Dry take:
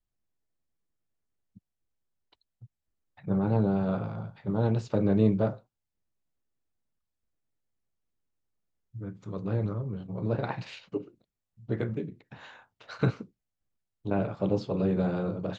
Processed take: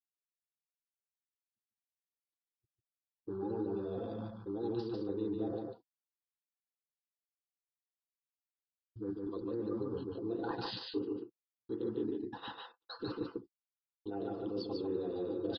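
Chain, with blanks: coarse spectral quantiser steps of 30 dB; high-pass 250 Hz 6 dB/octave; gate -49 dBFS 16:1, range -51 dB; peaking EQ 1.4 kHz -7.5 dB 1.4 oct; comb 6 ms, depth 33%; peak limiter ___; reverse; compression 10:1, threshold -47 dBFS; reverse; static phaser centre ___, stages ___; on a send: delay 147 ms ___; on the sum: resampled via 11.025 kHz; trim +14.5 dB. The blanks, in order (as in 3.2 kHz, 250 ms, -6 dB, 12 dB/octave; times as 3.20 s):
-25.5 dBFS, 610 Hz, 6, -3 dB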